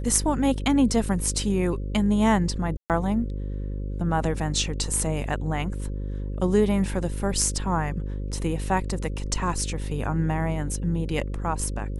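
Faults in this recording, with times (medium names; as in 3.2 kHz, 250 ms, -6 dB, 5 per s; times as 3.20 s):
buzz 50 Hz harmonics 11 -30 dBFS
2.77–2.90 s: dropout 128 ms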